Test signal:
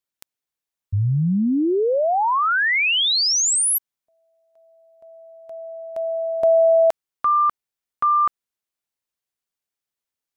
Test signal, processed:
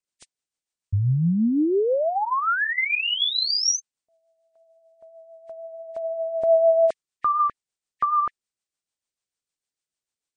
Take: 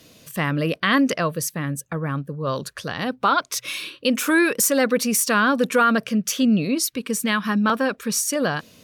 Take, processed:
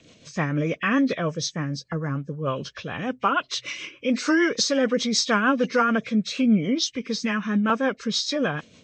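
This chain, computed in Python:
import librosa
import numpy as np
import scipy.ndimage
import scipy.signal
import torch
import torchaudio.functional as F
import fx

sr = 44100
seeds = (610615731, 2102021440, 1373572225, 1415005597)

y = fx.freq_compress(x, sr, knee_hz=1700.0, ratio=1.5)
y = fx.rotary(y, sr, hz=6.7)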